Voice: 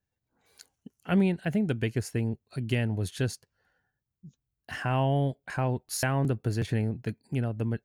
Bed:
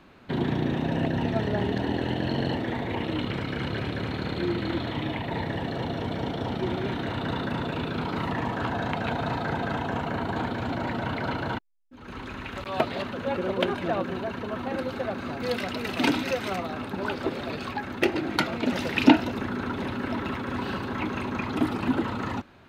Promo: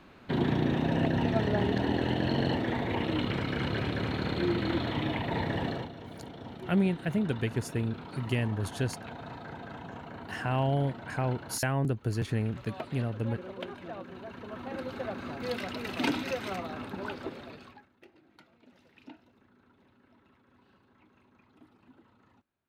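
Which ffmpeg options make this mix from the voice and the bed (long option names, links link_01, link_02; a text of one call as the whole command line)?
ffmpeg -i stem1.wav -i stem2.wav -filter_complex "[0:a]adelay=5600,volume=-2dB[link_01];[1:a]volume=7.5dB,afade=type=out:start_time=5.68:duration=0.22:silence=0.223872,afade=type=in:start_time=14.1:duration=0.96:silence=0.375837,afade=type=out:start_time=16.86:duration=1.03:silence=0.0398107[link_02];[link_01][link_02]amix=inputs=2:normalize=0" out.wav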